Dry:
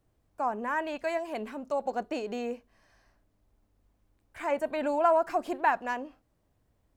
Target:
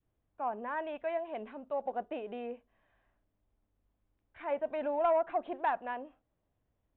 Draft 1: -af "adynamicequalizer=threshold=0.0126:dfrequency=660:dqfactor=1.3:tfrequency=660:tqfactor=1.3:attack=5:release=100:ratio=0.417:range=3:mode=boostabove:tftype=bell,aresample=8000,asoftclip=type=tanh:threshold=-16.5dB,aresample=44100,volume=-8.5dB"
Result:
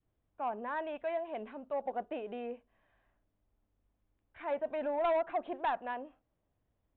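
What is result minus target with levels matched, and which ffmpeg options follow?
soft clipping: distortion +9 dB
-af "adynamicequalizer=threshold=0.0126:dfrequency=660:dqfactor=1.3:tfrequency=660:tqfactor=1.3:attack=5:release=100:ratio=0.417:range=3:mode=boostabove:tftype=bell,aresample=8000,asoftclip=type=tanh:threshold=-10dB,aresample=44100,volume=-8.5dB"

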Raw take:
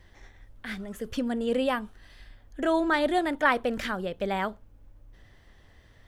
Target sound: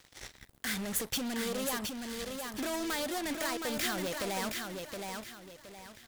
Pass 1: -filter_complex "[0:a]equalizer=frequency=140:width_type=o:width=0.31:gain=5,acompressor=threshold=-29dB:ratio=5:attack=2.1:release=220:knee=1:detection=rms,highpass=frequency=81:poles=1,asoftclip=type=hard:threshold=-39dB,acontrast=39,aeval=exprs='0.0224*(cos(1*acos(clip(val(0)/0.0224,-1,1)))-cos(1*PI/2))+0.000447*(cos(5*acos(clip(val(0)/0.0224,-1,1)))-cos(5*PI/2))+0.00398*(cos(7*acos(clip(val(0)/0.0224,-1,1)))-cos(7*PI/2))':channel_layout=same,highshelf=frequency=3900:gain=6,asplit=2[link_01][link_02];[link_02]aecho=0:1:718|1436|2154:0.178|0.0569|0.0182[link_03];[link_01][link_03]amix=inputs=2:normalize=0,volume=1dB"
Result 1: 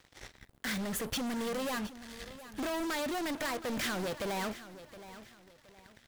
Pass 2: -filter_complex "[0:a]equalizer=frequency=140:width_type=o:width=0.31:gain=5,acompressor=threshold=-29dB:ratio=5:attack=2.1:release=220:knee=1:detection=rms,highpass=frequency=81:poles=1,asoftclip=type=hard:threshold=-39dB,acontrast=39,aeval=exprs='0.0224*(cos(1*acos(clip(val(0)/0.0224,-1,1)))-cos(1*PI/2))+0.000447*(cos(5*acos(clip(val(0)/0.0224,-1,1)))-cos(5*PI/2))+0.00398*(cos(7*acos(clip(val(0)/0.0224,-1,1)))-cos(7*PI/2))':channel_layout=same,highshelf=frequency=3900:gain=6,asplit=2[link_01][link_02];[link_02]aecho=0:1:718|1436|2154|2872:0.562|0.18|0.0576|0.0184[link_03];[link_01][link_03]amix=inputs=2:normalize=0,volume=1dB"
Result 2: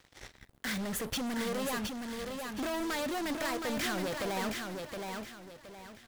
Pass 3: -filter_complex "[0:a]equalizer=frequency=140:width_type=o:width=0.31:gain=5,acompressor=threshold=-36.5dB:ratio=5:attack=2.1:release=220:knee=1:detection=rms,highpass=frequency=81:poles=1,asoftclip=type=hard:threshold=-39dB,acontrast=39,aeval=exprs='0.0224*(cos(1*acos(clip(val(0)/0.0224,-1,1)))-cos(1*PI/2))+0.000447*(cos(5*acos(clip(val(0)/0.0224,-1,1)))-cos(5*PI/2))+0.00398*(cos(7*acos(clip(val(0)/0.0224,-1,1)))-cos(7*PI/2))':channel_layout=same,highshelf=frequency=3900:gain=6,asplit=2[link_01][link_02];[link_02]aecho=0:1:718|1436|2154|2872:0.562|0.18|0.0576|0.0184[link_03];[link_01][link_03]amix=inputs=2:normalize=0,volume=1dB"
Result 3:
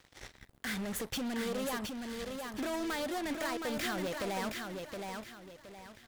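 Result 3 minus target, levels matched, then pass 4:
8,000 Hz band −4.5 dB
-filter_complex "[0:a]equalizer=frequency=140:width_type=o:width=0.31:gain=5,acompressor=threshold=-36.5dB:ratio=5:attack=2.1:release=220:knee=1:detection=rms,highpass=frequency=81:poles=1,asoftclip=type=hard:threshold=-39dB,acontrast=39,aeval=exprs='0.0224*(cos(1*acos(clip(val(0)/0.0224,-1,1)))-cos(1*PI/2))+0.000447*(cos(5*acos(clip(val(0)/0.0224,-1,1)))-cos(5*PI/2))+0.00398*(cos(7*acos(clip(val(0)/0.0224,-1,1)))-cos(7*PI/2))':channel_layout=same,highshelf=frequency=3900:gain=14.5,asplit=2[link_01][link_02];[link_02]aecho=0:1:718|1436|2154|2872:0.562|0.18|0.0576|0.0184[link_03];[link_01][link_03]amix=inputs=2:normalize=0,volume=1dB"

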